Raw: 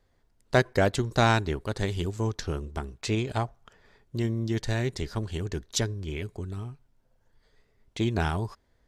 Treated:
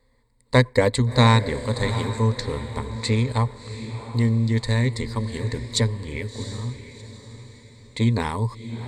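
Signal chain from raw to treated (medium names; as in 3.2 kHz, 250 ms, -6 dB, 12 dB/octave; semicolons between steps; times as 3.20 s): rippled EQ curve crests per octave 0.98, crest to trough 15 dB; echo that smears into a reverb 706 ms, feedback 41%, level -11.5 dB; trim +2.5 dB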